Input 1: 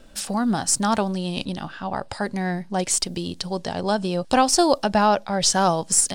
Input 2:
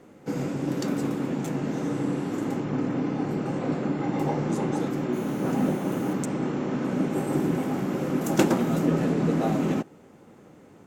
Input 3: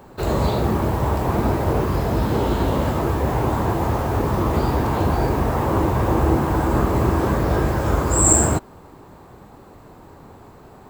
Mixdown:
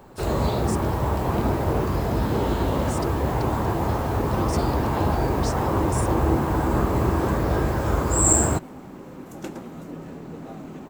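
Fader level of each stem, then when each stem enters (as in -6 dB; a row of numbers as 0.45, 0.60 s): -17.0, -14.0, -3.0 dB; 0.00, 1.05, 0.00 s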